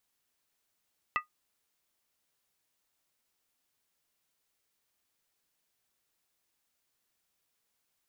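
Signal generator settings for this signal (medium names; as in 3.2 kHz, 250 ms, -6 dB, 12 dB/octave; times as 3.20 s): skin hit, lowest mode 1.23 kHz, modes 3, decay 0.13 s, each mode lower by 3 dB, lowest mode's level -23 dB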